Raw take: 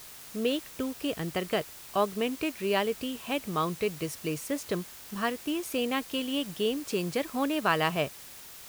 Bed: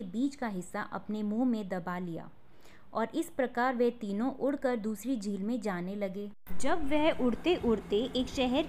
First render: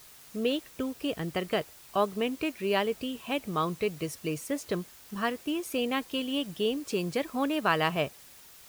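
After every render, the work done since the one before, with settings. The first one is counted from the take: denoiser 6 dB, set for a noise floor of -47 dBFS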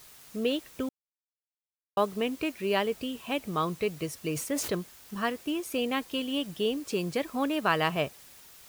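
0.89–1.97 mute; 4.27–4.75 sustainer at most 60 dB/s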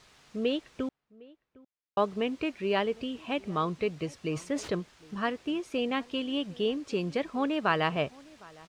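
air absorption 110 m; outdoor echo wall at 130 m, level -23 dB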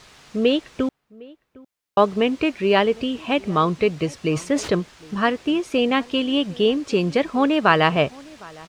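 gain +10.5 dB

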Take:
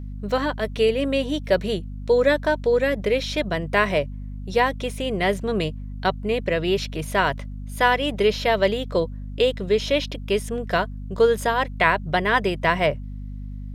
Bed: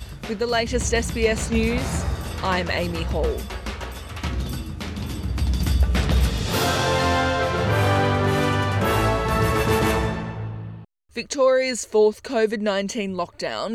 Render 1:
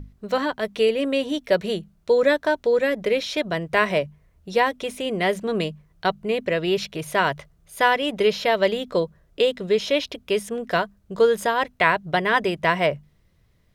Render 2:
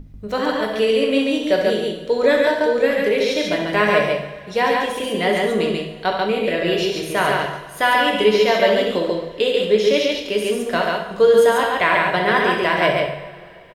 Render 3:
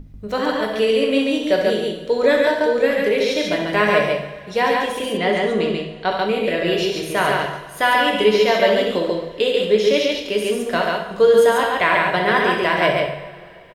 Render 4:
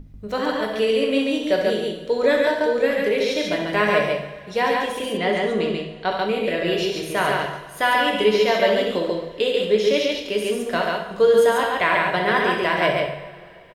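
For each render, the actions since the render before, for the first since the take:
notches 50/100/150/200/250 Hz
loudspeakers at several distances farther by 23 m -9 dB, 48 m -2 dB; two-slope reverb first 0.72 s, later 3.1 s, from -18 dB, DRR 2 dB
5.17–6.11 air absorption 62 m
gain -2.5 dB

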